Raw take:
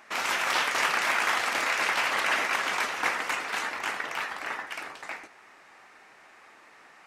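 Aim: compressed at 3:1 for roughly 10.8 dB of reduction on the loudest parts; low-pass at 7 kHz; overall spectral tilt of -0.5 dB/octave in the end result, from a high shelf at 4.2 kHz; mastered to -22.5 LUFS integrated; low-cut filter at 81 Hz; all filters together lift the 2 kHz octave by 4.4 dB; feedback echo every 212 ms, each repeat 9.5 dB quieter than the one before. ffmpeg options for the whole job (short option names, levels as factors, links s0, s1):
-af "highpass=81,lowpass=7000,equalizer=f=2000:t=o:g=6.5,highshelf=f=4200:g=-5.5,acompressor=threshold=0.02:ratio=3,aecho=1:1:212|424|636|848:0.335|0.111|0.0365|0.012,volume=3.16"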